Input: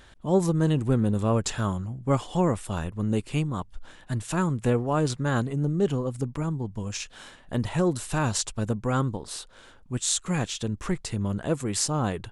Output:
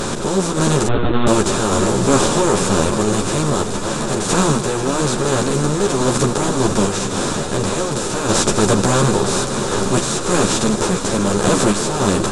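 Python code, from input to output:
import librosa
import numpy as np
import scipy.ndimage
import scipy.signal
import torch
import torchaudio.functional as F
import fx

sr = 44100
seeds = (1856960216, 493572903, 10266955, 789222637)

p1 = fx.bin_compress(x, sr, power=0.2)
p2 = np.clip(p1, -10.0 ** (-9.0 / 20.0), 10.0 ** (-9.0 / 20.0))
p3 = p1 + (p2 * librosa.db_to_amplitude(-8.0))
p4 = fx.tremolo_random(p3, sr, seeds[0], hz=3.5, depth_pct=55)
p5 = p4 + fx.echo_heads(p4, sr, ms=161, heads='first and third', feedback_pct=75, wet_db=-15.0, dry=0)
p6 = fx.lpc_monotone(p5, sr, seeds[1], pitch_hz=120.0, order=10, at=(0.87, 1.27))
p7 = fx.ensemble(p6, sr)
y = p7 * librosa.db_to_amplitude(3.5)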